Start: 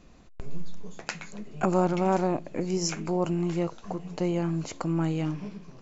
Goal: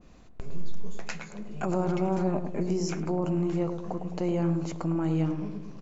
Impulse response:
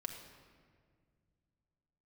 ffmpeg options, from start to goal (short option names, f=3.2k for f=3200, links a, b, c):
-filter_complex "[0:a]asettb=1/sr,asplit=3[a][b][c];[a]atrim=end=1.864[d];[b]atrim=start=1.86:end=2.63,asetpts=PTS-STARTPTS,afade=t=in:d=0.004:c=qsin,afade=t=out:st=0.766:d=0.004:c=qsin,aecho=1:1:5:0.58,atrim=end_sample=33957[e];[c]atrim=start=2.626[f];[d][e]acrossfade=d=0.004:c1=hsin:c2=qsin[g];[g][f]acrossfade=d=0.004:c1=qsin:c2=hsin,alimiter=limit=-20.5dB:level=0:latency=1:release=14,asplit=2[h][i];[i]adelay=106,lowpass=f=880:p=1,volume=-5.5dB,asplit=2[j][k];[k]adelay=106,lowpass=f=880:p=1,volume=0.54,asplit=2[l][m];[m]adelay=106,lowpass=f=880:p=1,volume=0.54,asplit=2[n][o];[o]adelay=106,lowpass=f=880:p=1,volume=0.54,asplit=2[p][q];[q]adelay=106,lowpass=f=880:p=1,volume=0.54,asplit=2[r][s];[s]adelay=106,lowpass=f=880:p=1,volume=0.54,asplit=2[t][u];[u]adelay=106,lowpass=f=880:p=1,volume=0.54[v];[h][j][l][n][p][r][t][v]amix=inputs=8:normalize=0,adynamicequalizer=threshold=0.00355:dfrequency=1700:dqfactor=0.7:tfrequency=1700:tqfactor=0.7:attack=5:release=100:ratio=0.375:range=3:mode=cutabove:tftype=highshelf"